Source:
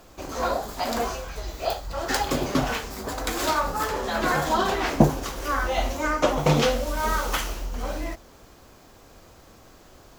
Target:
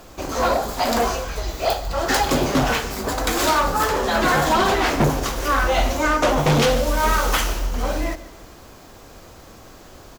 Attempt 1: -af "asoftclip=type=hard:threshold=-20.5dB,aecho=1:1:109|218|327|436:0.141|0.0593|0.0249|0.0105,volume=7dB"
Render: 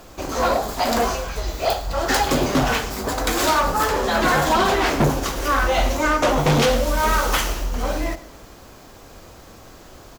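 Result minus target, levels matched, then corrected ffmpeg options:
echo 39 ms early
-af "asoftclip=type=hard:threshold=-20.5dB,aecho=1:1:148|296|444|592:0.141|0.0593|0.0249|0.0105,volume=7dB"

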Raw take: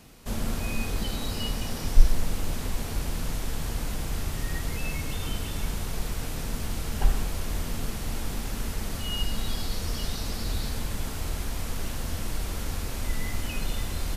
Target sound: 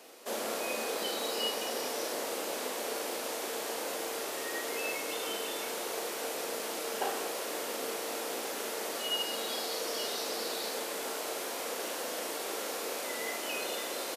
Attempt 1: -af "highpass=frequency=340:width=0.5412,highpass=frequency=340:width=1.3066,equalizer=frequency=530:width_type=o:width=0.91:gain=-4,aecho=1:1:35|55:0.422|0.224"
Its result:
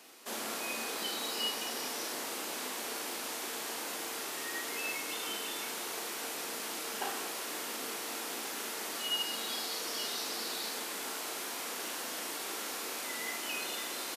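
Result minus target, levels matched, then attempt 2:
500 Hz band −7.0 dB
-af "highpass=frequency=340:width=0.5412,highpass=frequency=340:width=1.3066,equalizer=frequency=530:width_type=o:width=0.91:gain=6.5,aecho=1:1:35|55:0.422|0.224"

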